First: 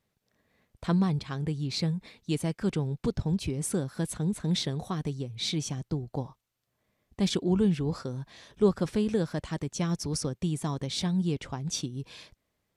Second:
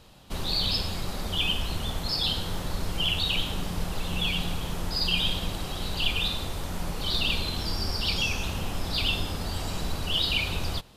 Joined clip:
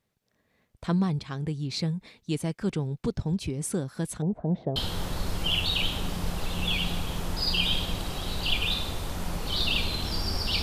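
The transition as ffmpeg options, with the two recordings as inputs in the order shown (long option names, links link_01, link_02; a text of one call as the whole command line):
ffmpeg -i cue0.wav -i cue1.wav -filter_complex "[0:a]asettb=1/sr,asplit=3[link_01][link_02][link_03];[link_01]atrim=end=4.224[link_04];[link_02]atrim=start=4.22:end=4.76,asetpts=PTS-STARTPTS,afade=type=in:duration=0.004:curve=qsin,afade=type=out:start_time=0.536:duration=0.004:curve=qsin,lowpass=frequency=690:width_type=q:width=4.7[link_05];[link_03]atrim=start=4.756[link_06];[link_04][link_05]acrossfade=duration=0.004:curve1=hsin:curve2=qsin[link_07];[link_07][link_06]acrossfade=duration=0.004:curve1=qsin:curve2=hsin,apad=whole_dur=10.62,atrim=end=10.62,atrim=end=4.762[link_08];[1:a]atrim=start=2.298:end=8.16[link_09];[link_08][link_09]acrossfade=duration=0.004:curve1=hsin:curve2=hsin" out.wav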